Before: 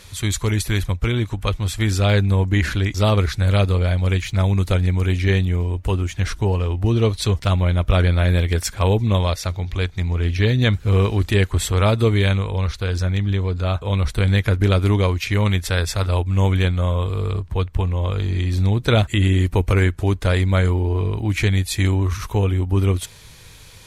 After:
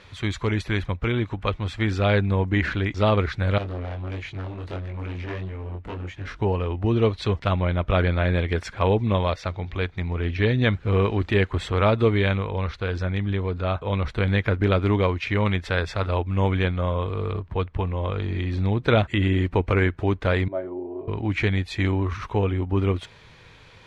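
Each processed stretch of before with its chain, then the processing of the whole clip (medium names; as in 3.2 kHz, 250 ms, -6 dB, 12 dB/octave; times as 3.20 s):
3.58–6.40 s: overload inside the chain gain 23 dB + chorus 1.5 Hz, delay 20 ms, depth 3.7 ms
20.48–21.08 s: two resonant band-passes 470 Hz, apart 0.76 oct + comb 7.4 ms, depth 66%
whole clip: low-pass 2.6 kHz 12 dB/octave; bass shelf 110 Hz -11 dB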